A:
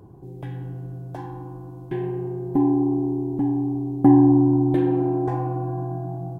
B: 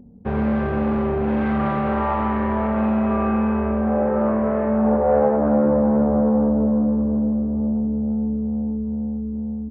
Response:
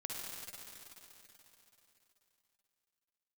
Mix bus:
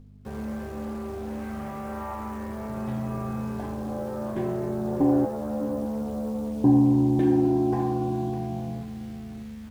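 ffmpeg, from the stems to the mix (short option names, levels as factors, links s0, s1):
-filter_complex "[0:a]adelay=2450,volume=1.12,asplit=3[s0][s1][s2];[s0]atrim=end=5.25,asetpts=PTS-STARTPTS,afade=t=out:st=5.246:d=0.004:c=hsin[s3];[s1]atrim=start=5.25:end=6.64,asetpts=PTS-STARTPTS,volume=0[s4];[s2]atrim=start=6.64,asetpts=PTS-STARTPTS,afade=t=in:d=0.004:c=hsin[s5];[s3][s4][s5]concat=n=3:v=0:a=1,asplit=2[s6][s7];[s7]volume=0.224[s8];[1:a]acrusher=bits=7:dc=4:mix=0:aa=0.000001,aeval=exprs='val(0)+0.0251*(sin(2*PI*50*n/s)+sin(2*PI*2*50*n/s)/2+sin(2*PI*3*50*n/s)/3+sin(2*PI*4*50*n/s)/4+sin(2*PI*5*50*n/s)/5)':c=same,volume=0.335[s9];[s8]aecho=0:1:603:1[s10];[s6][s9][s10]amix=inputs=3:normalize=0,flanger=delay=9.1:depth=1.6:regen=-49:speed=0.32:shape=triangular"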